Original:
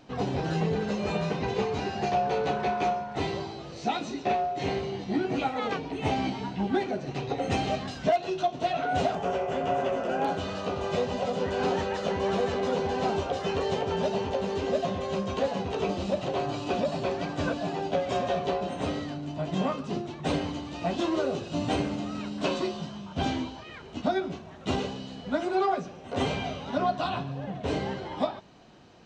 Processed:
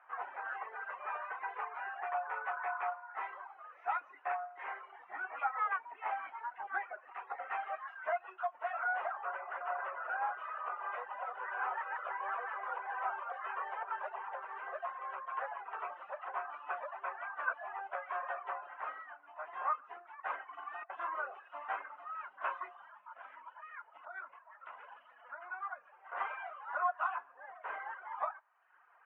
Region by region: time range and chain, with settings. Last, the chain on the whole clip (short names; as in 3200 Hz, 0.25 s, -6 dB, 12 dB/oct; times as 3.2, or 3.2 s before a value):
20.44–20.9 negative-ratio compressor -35 dBFS, ratio -0.5 + comb 2.7 ms, depth 81%
22.92–25.92 notch comb 390 Hz + compressor 12:1, threshold -33 dBFS + Doppler distortion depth 0.13 ms
whole clip: HPF 1100 Hz 24 dB/oct; reverb removal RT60 0.92 s; inverse Chebyshev low-pass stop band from 4000 Hz, stop band 50 dB; gain +5.5 dB